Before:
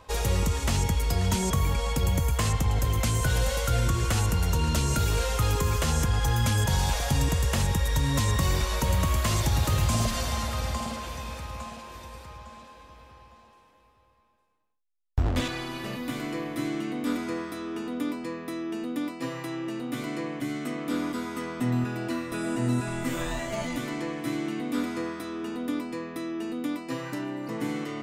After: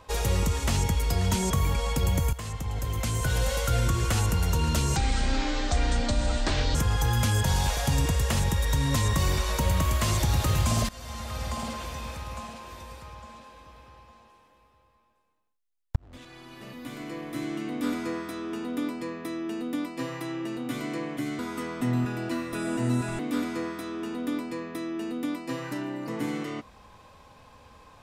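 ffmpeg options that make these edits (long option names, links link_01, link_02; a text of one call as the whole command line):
ffmpeg -i in.wav -filter_complex "[0:a]asplit=8[link_01][link_02][link_03][link_04][link_05][link_06][link_07][link_08];[link_01]atrim=end=2.33,asetpts=PTS-STARTPTS,afade=type=out:start_time=2.326:duration=0.004:curve=hsin:silence=0.237137[link_09];[link_02]atrim=start=2.33:end=4.964,asetpts=PTS-STARTPTS,afade=type=in:duration=1.22:silence=0.237137[link_10];[link_03]atrim=start=4.96:end=5.98,asetpts=PTS-STARTPTS,asetrate=25137,aresample=44100[link_11];[link_04]atrim=start=5.976:end=10.12,asetpts=PTS-STARTPTS,afade=type=out:start_time=4.14:duration=0.004:curve=hsin:silence=0.112202[link_12];[link_05]atrim=start=10.12:end=15.19,asetpts=PTS-STARTPTS,afade=type=in:duration=0.79:silence=0.112202,afade=type=out:start_time=5.066:duration=0.004:curve=hsin[link_13];[link_06]atrim=start=15.19:end=20.622,asetpts=PTS-STARTPTS,afade=type=in:duration=1.97[link_14];[link_07]atrim=start=21.178:end=22.982[link_15];[link_08]atrim=start=24.598[link_16];[link_09][link_10]concat=n=2:v=0:a=1[link_17];[link_17][link_11]acrossfade=duration=0.004:curve1=hsin:curve2=hsin[link_18];[link_12][link_13][link_14]concat=n=3:v=0:a=1[link_19];[link_18][link_19]acrossfade=duration=0.004:curve1=hsin:curve2=hsin[link_20];[link_20][link_15]acrossfade=duration=0.004:curve1=hsin:curve2=hsin[link_21];[link_21][link_16]acrossfade=duration=0.004:curve1=hsin:curve2=hsin" out.wav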